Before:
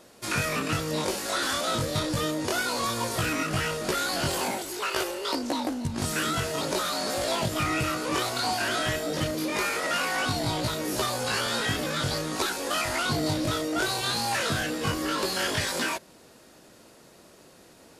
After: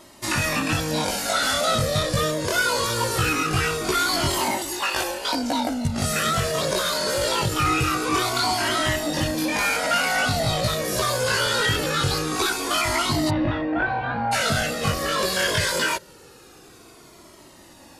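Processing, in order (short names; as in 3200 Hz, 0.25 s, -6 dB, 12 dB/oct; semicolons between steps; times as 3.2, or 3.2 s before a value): 13.29–14.31 LPF 2700 Hz -> 1700 Hz 24 dB/oct; in parallel at +0.5 dB: limiter -19.5 dBFS, peak gain reduction 7 dB; on the sum: cascading flanger falling 0.23 Hz; gain +4 dB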